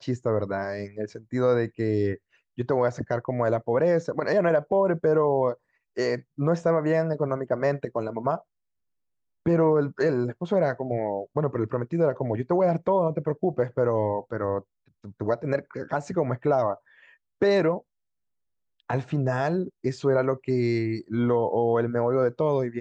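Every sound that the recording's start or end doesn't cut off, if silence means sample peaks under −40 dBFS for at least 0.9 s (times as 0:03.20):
0:09.46–0:17.80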